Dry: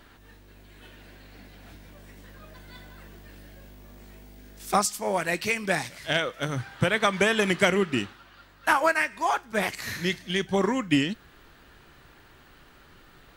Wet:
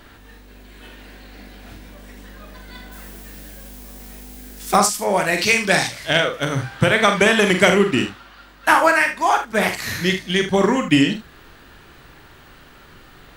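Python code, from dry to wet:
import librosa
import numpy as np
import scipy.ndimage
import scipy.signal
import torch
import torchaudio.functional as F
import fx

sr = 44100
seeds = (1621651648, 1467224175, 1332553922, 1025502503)

y = fx.room_early_taps(x, sr, ms=(44, 76), db=(-7.0, -11.5))
y = fx.dmg_noise_colour(y, sr, seeds[0], colour='blue', level_db=-51.0, at=(2.91, 4.76), fade=0.02)
y = fx.dynamic_eq(y, sr, hz=4700.0, q=0.77, threshold_db=-41.0, ratio=4.0, max_db=7, at=(5.37, 6.06), fade=0.02)
y = F.gain(torch.from_numpy(y), 7.0).numpy()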